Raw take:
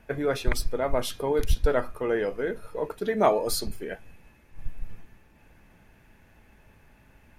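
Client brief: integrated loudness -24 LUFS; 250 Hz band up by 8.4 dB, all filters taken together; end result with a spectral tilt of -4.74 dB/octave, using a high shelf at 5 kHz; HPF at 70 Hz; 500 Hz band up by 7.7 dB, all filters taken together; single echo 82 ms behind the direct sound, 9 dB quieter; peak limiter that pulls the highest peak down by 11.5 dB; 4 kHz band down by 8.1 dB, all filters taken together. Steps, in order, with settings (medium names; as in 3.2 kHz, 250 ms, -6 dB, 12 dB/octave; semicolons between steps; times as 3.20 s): high-pass 70 Hz; peaking EQ 250 Hz +8.5 dB; peaking EQ 500 Hz +7 dB; peaking EQ 4 kHz -7 dB; treble shelf 5 kHz -6.5 dB; peak limiter -14.5 dBFS; delay 82 ms -9 dB; trim +1 dB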